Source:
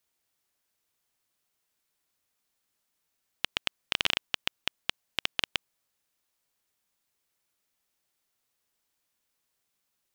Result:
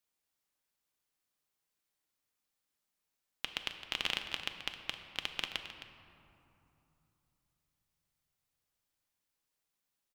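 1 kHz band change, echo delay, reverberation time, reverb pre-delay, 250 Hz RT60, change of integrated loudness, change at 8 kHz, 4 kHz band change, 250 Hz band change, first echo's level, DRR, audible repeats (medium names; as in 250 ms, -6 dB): -6.0 dB, 264 ms, 3.0 s, 4 ms, 3.8 s, -6.5 dB, -7.0 dB, -6.5 dB, -5.5 dB, -12.5 dB, 5.0 dB, 1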